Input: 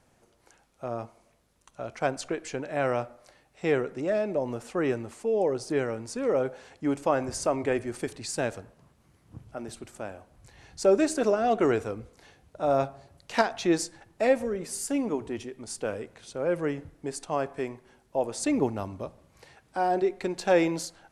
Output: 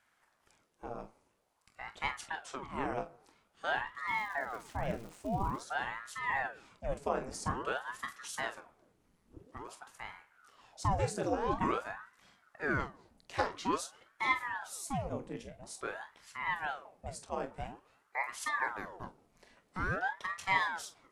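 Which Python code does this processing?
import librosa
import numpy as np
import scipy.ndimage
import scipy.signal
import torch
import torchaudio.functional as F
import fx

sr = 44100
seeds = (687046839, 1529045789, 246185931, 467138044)

y = fx.dmg_crackle(x, sr, seeds[0], per_s=300.0, level_db=-36.0, at=(4.07, 5.56), fade=0.02)
y = fx.room_early_taps(y, sr, ms=(25, 45), db=(-10.5, -11.5))
y = fx.ring_lfo(y, sr, carrier_hz=820.0, swing_pct=90, hz=0.49)
y = y * librosa.db_to_amplitude(-6.5)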